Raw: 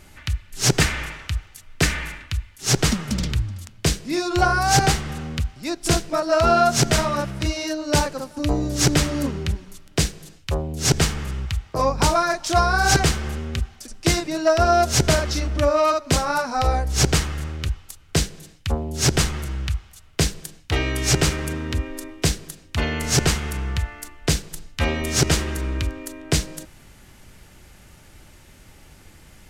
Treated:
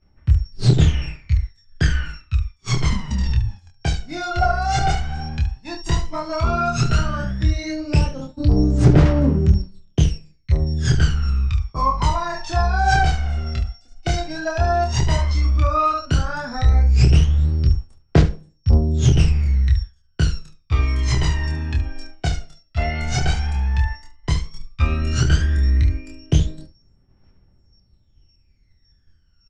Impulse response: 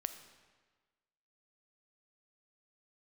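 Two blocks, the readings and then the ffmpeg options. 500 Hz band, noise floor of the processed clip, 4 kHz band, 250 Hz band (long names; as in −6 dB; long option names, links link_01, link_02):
−4.5 dB, −59 dBFS, −5.5 dB, +1.0 dB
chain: -filter_complex "[0:a]asplit=2[link_01][link_02];[link_02]aecho=0:1:16|26|72:0.266|0.668|0.355[link_03];[link_01][link_03]amix=inputs=2:normalize=0,aeval=exprs='val(0)+0.0141*sin(2*PI*5500*n/s)':channel_layout=same,agate=range=-33dB:threshold=-25dB:ratio=3:detection=peak,aphaser=in_gain=1:out_gain=1:delay=1.5:decay=0.78:speed=0.11:type=triangular,lowpass=frequency=7100:width=0.5412,lowpass=frequency=7100:width=1.3066,highshelf=frequency=3800:gain=-10,asplit=2[link_04][link_05];[link_05]acompressor=threshold=-19dB:ratio=6,volume=-2dB[link_06];[link_04][link_06]amix=inputs=2:normalize=0,lowshelf=frequency=140:gain=5,volume=-9.5dB"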